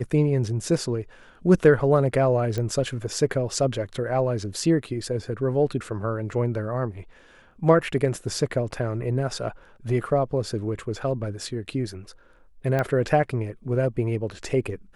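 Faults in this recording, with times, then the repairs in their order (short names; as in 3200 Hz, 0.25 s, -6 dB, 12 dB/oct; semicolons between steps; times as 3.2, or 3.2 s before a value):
2.58 pop -16 dBFS
12.79 pop -13 dBFS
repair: de-click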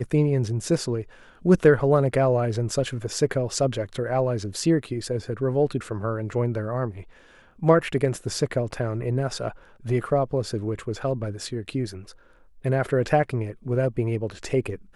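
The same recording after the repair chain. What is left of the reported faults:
none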